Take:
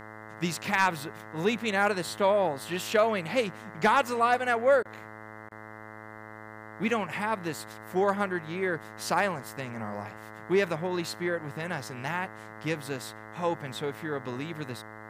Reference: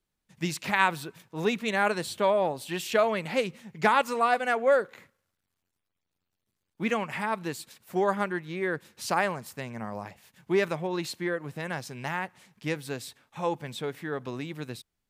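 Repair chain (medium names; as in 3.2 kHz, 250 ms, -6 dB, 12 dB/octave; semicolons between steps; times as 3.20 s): clip repair -13 dBFS; de-hum 108.3 Hz, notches 19; interpolate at 4.83/5.49 s, 21 ms; expander -37 dBFS, range -21 dB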